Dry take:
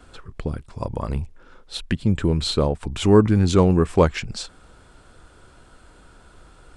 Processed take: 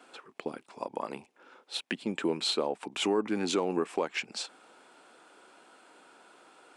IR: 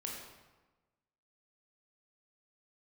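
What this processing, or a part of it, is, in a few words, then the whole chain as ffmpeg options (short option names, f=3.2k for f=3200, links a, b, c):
laptop speaker: -af "highpass=f=260:w=0.5412,highpass=f=260:w=1.3066,equalizer=f=820:t=o:w=0.52:g=5.5,equalizer=f=2.5k:t=o:w=0.58:g=5.5,alimiter=limit=-13dB:level=0:latency=1:release=213,volume=-5dB"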